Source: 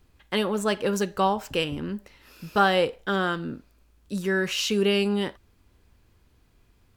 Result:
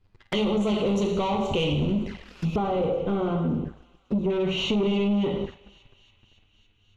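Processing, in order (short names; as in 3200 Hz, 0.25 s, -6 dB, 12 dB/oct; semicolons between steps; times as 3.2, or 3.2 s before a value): low shelf 170 Hz +5.5 dB; plate-style reverb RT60 0.73 s, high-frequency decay 0.9×, DRR 1.5 dB; sample leveller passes 3; soft clip -12 dBFS, distortion -17 dB; LPF 4400 Hz 12 dB/oct, from 2.56 s 1300 Hz, from 4.3 s 2300 Hz; compressor 6:1, threshold -22 dBFS, peak gain reduction 7.5 dB; envelope flanger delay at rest 10.6 ms, full sweep at -23.5 dBFS; thinning echo 0.28 s, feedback 80%, high-pass 1100 Hz, level -22 dB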